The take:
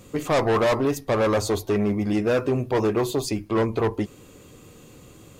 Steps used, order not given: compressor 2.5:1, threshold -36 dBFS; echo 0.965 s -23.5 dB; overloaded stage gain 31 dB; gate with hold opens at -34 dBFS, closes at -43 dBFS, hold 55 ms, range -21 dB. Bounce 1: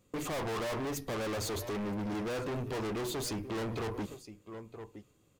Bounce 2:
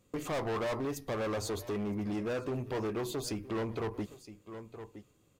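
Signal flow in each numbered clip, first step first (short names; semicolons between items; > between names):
gate with hold > echo > overloaded stage > compressor; gate with hold > echo > compressor > overloaded stage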